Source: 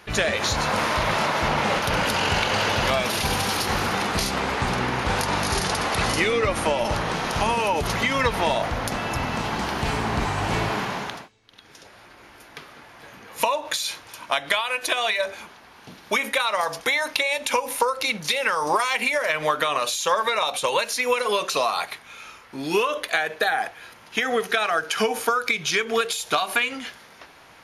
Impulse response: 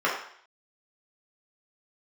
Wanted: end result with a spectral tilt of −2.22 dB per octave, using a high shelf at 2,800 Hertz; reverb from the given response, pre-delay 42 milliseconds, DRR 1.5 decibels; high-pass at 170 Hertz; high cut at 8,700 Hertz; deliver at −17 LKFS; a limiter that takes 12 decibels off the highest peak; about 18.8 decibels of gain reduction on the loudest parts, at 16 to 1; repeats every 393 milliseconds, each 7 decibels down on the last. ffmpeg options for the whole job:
-filter_complex "[0:a]highpass=170,lowpass=8700,highshelf=frequency=2800:gain=4,acompressor=threshold=-35dB:ratio=16,alimiter=level_in=6.5dB:limit=-24dB:level=0:latency=1,volume=-6.5dB,aecho=1:1:393|786|1179|1572|1965:0.447|0.201|0.0905|0.0407|0.0183,asplit=2[link_01][link_02];[1:a]atrim=start_sample=2205,adelay=42[link_03];[link_02][link_03]afir=irnorm=-1:irlink=0,volume=-16.5dB[link_04];[link_01][link_04]amix=inputs=2:normalize=0,volume=20.5dB"

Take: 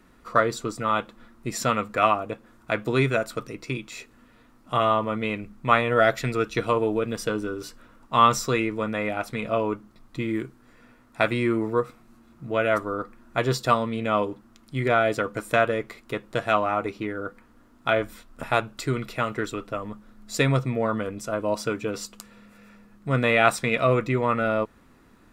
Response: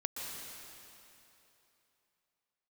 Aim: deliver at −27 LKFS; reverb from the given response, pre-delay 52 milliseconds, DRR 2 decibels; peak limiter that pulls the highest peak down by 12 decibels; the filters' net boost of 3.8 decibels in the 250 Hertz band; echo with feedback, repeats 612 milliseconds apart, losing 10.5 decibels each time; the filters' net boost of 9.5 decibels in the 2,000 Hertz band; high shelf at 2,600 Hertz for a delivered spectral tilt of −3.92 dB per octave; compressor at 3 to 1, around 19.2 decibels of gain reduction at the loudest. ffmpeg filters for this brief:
-filter_complex "[0:a]equalizer=frequency=250:width_type=o:gain=4.5,equalizer=frequency=2000:width_type=o:gain=8.5,highshelf=frequency=2600:gain=8.5,acompressor=threshold=-35dB:ratio=3,alimiter=limit=-23dB:level=0:latency=1,aecho=1:1:612|1224|1836:0.299|0.0896|0.0269,asplit=2[link_01][link_02];[1:a]atrim=start_sample=2205,adelay=52[link_03];[link_02][link_03]afir=irnorm=-1:irlink=0,volume=-4dB[link_04];[link_01][link_04]amix=inputs=2:normalize=0,volume=7.5dB"

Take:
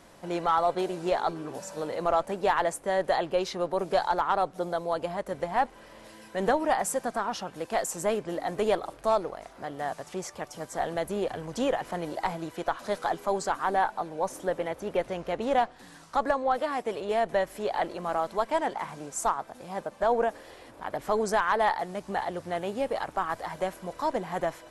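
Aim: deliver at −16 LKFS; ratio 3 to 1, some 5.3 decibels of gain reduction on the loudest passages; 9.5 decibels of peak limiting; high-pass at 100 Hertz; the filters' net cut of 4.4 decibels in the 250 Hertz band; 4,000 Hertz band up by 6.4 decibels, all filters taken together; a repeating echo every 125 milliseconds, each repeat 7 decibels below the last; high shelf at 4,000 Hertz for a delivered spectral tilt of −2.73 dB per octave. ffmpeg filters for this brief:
ffmpeg -i in.wav -af "highpass=100,equalizer=frequency=250:width_type=o:gain=-6.5,highshelf=frequency=4000:gain=5.5,equalizer=frequency=4000:width_type=o:gain=5,acompressor=threshold=-27dB:ratio=3,alimiter=limit=-24dB:level=0:latency=1,aecho=1:1:125|250|375|500|625:0.447|0.201|0.0905|0.0407|0.0183,volume=18.5dB" out.wav

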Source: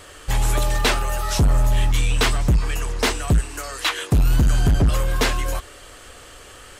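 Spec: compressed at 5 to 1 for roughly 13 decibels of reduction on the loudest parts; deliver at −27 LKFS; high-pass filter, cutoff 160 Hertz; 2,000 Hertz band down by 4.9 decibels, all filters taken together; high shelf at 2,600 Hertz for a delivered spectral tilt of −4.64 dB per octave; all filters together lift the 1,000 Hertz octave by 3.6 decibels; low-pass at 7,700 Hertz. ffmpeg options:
ffmpeg -i in.wav -af "highpass=160,lowpass=7700,equalizer=frequency=1000:width_type=o:gain=7,equalizer=frequency=2000:width_type=o:gain=-6,highshelf=frequency=2600:gain=-6.5,acompressor=threshold=-32dB:ratio=5,volume=9dB" out.wav

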